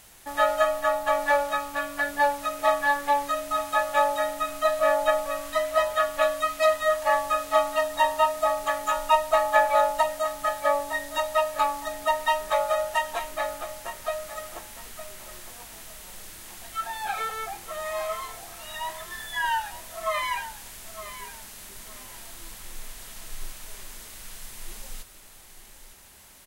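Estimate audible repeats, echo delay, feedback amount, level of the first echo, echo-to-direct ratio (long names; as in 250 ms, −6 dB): 2, 910 ms, 23%, −13.0 dB, −13.0 dB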